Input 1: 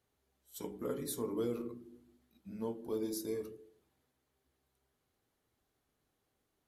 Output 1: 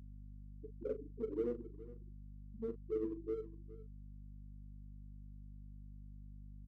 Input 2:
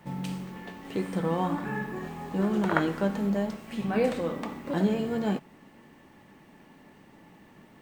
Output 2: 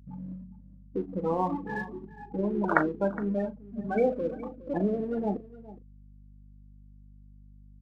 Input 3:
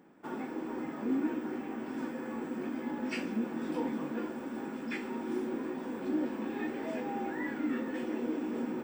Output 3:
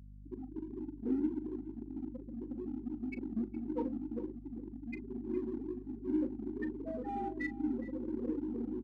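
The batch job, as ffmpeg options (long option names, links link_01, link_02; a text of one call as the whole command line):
ffmpeg -i in.wav -filter_complex "[0:a]lowpass=11000,afftfilt=real='re*gte(hypot(re,im),0.0794)':imag='im*gte(hypot(re,im),0.0794)':win_size=1024:overlap=0.75,aemphasis=mode=production:type=bsi,bandreject=frequency=50:width_type=h:width=6,bandreject=frequency=100:width_type=h:width=6,bandreject=frequency=150:width_type=h:width=6,asplit=2[link_01][link_02];[link_02]aeval=exprs='sgn(val(0))*max(abs(val(0))-0.0075,0)':channel_layout=same,volume=-8dB[link_03];[link_01][link_03]amix=inputs=2:normalize=0,aeval=exprs='val(0)+0.00251*(sin(2*PI*50*n/s)+sin(2*PI*2*50*n/s)/2+sin(2*PI*3*50*n/s)/3+sin(2*PI*4*50*n/s)/4+sin(2*PI*5*50*n/s)/5)':channel_layout=same,asplit=2[link_04][link_05];[link_05]adelay=39,volume=-13dB[link_06];[link_04][link_06]amix=inputs=2:normalize=0,asplit=2[link_07][link_08];[link_08]aecho=0:1:414:0.126[link_09];[link_07][link_09]amix=inputs=2:normalize=0" out.wav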